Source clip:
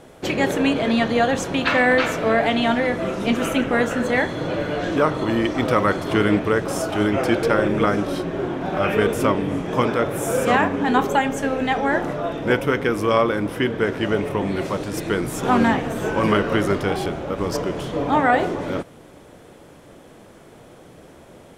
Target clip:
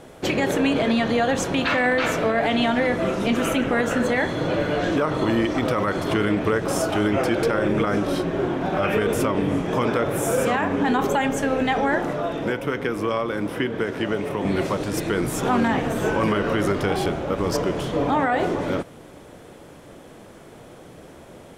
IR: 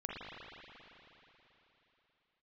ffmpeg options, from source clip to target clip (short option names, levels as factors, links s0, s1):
-filter_complex "[0:a]asettb=1/sr,asplit=3[s0][s1][s2];[s0]atrim=end=11.984[s3];[s1]atrim=start=11.98:end=14.45,asetpts=PTS-STARTPTS,afade=t=in:d=0.004:c=qsin,afade=t=out:st=2.466:d=0.004:c=qsin,acrossover=split=130|3700[s4][s5][s6];[s4]acompressor=threshold=0.00631:ratio=4[s7];[s5]acompressor=threshold=0.0708:ratio=4[s8];[s6]acompressor=threshold=0.00398:ratio=4[s9];[s7][s8][s9]amix=inputs=3:normalize=0[s10];[s2]atrim=start=14.446[s11];[s3][s10]acrossfade=d=0.004:c1=hsin:c2=qsin[s12];[s12][s11]acrossfade=d=0.004:c1=qsin:c2=hsin,alimiter=limit=0.211:level=0:latency=1:release=67,volume=1.19"